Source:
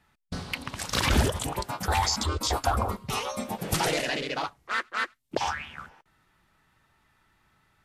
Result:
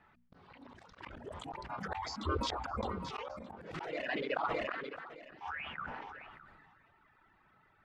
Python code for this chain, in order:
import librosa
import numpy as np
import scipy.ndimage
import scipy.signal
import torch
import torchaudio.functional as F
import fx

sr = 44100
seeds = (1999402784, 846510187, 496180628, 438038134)

y = fx.dereverb_blind(x, sr, rt60_s=1.6)
y = fx.auto_swell(y, sr, attack_ms=126.0)
y = scipy.signal.sosfilt(scipy.signal.butter(2, 1900.0, 'lowpass', fs=sr, output='sos'), y)
y = fx.low_shelf(y, sr, hz=180.0, db=-8.5)
y = fx.hum_notches(y, sr, base_hz=60, count=4)
y = fx.auto_swell(y, sr, attack_ms=639.0)
y = fx.echo_feedback(y, sr, ms=615, feedback_pct=41, wet_db=-22.0)
y = fx.sustainer(y, sr, db_per_s=26.0)
y = y * 10.0 ** (4.5 / 20.0)